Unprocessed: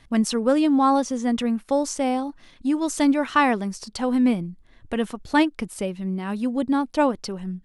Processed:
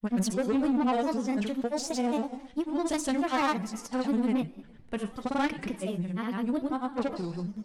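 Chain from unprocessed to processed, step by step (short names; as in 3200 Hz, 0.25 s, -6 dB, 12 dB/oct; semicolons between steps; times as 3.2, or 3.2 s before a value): two-slope reverb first 0.83 s, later 2.6 s, from -23 dB, DRR 9.5 dB; tube stage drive 18 dB, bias 0.25; grains, pitch spread up and down by 3 st; gain -3 dB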